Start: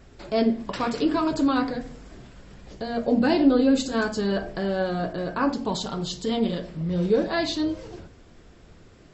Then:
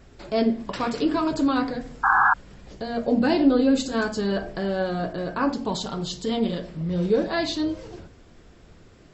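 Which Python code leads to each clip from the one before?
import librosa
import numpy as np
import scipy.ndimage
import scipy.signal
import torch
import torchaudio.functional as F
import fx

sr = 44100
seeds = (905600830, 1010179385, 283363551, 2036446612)

y = fx.spec_paint(x, sr, seeds[0], shape='noise', start_s=2.03, length_s=0.31, low_hz=740.0, high_hz=1700.0, level_db=-18.0)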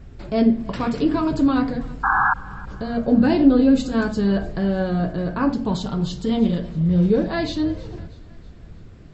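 y = fx.bass_treble(x, sr, bass_db=11, treble_db=-5)
y = fx.echo_thinned(y, sr, ms=320, feedback_pct=54, hz=420.0, wet_db=-20.5)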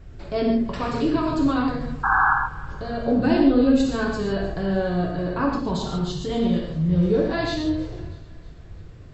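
y = fx.peak_eq(x, sr, hz=220.0, db=-12.0, octaves=0.25)
y = fx.rev_gated(y, sr, seeds[1], gate_ms=170, shape='flat', drr_db=0.5)
y = F.gain(torch.from_numpy(y), -2.5).numpy()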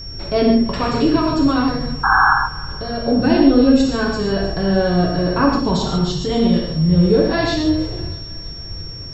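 y = fx.rider(x, sr, range_db=4, speed_s=2.0)
y = y + 10.0 ** (-37.0 / 20.0) * np.sin(2.0 * np.pi * 5500.0 * np.arange(len(y)) / sr)
y = F.gain(torch.from_numpy(y), 5.0).numpy()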